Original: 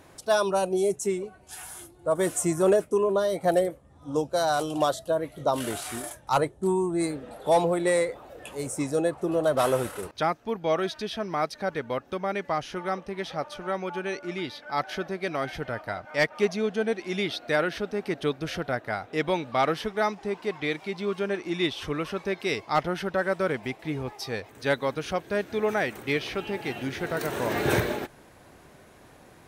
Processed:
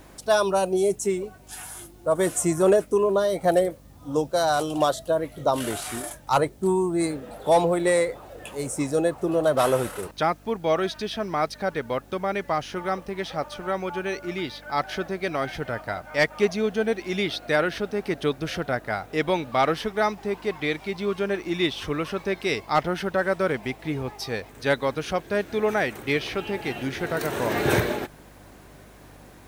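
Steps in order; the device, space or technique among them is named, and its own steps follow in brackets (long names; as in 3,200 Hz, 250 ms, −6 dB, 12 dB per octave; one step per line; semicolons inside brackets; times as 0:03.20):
video cassette with head-switching buzz (hum with harmonics 50 Hz, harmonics 6, −55 dBFS −4 dB per octave; white noise bed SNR 37 dB)
level +2.5 dB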